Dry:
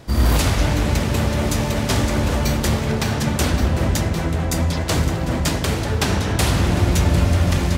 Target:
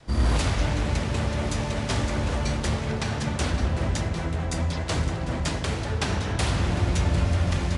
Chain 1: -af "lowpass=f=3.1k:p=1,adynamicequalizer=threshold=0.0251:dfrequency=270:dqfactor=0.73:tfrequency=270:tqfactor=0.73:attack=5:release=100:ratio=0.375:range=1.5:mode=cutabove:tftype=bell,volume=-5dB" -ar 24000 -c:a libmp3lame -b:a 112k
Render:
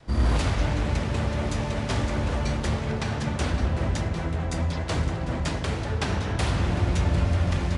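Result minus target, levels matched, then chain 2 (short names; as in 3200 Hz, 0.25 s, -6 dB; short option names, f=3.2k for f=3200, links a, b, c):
8000 Hz band -4.0 dB
-af "lowpass=f=6.3k:p=1,adynamicequalizer=threshold=0.0251:dfrequency=270:dqfactor=0.73:tfrequency=270:tqfactor=0.73:attack=5:release=100:ratio=0.375:range=1.5:mode=cutabove:tftype=bell,volume=-5dB" -ar 24000 -c:a libmp3lame -b:a 112k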